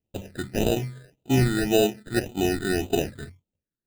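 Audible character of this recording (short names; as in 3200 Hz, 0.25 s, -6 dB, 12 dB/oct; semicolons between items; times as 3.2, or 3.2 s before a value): aliases and images of a low sample rate 1100 Hz, jitter 0%; phasing stages 8, 1.8 Hz, lowest notch 780–1700 Hz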